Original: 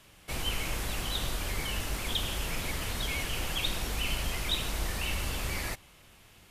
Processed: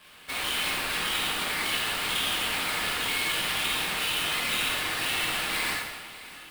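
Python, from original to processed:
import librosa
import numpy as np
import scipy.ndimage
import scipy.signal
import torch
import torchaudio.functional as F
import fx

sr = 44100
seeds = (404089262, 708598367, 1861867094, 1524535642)

p1 = scipy.signal.sosfilt(scipy.signal.butter(2, 1200.0, 'highpass', fs=sr, output='sos'), x)
p2 = fx.high_shelf(p1, sr, hz=6500.0, db=-7.0)
p3 = p2 + 0.58 * np.pad(p2, (int(6.4 * sr / 1000.0), 0))[:len(p2)]
p4 = fx.over_compress(p3, sr, threshold_db=-38.0, ratio=-1.0)
p5 = p3 + (p4 * librosa.db_to_amplitude(2.5))
p6 = fx.sample_hold(p5, sr, seeds[0], rate_hz=6400.0, jitter_pct=20)
p7 = p6 + fx.echo_feedback(p6, sr, ms=611, feedback_pct=55, wet_db=-18.0, dry=0)
p8 = fx.rev_plate(p7, sr, seeds[1], rt60_s=1.2, hf_ratio=0.9, predelay_ms=0, drr_db=-4.5)
y = p8 * librosa.db_to_amplitude(-4.0)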